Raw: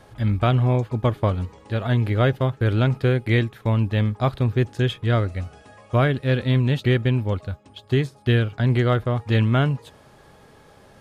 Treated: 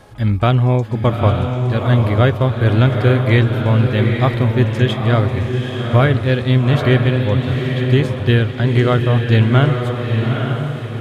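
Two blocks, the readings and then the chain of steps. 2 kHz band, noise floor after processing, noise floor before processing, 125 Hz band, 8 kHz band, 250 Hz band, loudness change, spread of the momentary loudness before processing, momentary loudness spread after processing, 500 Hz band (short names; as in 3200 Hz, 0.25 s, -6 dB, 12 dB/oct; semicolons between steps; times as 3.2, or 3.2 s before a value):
+6.5 dB, -25 dBFS, -51 dBFS, +7.0 dB, n/a, +6.5 dB, +6.0 dB, 8 LU, 5 LU, +6.5 dB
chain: diffused feedback echo 0.858 s, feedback 41%, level -4 dB; gain +5 dB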